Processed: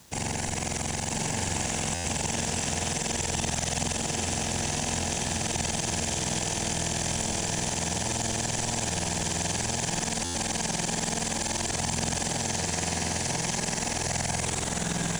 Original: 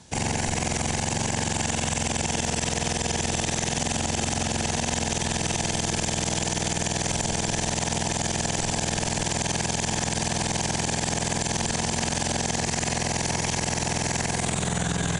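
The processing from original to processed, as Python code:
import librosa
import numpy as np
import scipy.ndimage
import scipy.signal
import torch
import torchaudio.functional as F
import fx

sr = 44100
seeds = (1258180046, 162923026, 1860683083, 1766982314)

p1 = fx.high_shelf(x, sr, hz=8600.0, db=6.0)
p2 = fx.quant_dither(p1, sr, seeds[0], bits=8, dither='none')
p3 = p2 + fx.echo_single(p2, sr, ms=998, db=-4.0, dry=0)
p4 = fx.buffer_glitch(p3, sr, at_s=(1.94, 10.24), block=512, repeats=8)
y = F.gain(torch.from_numpy(p4), -5.0).numpy()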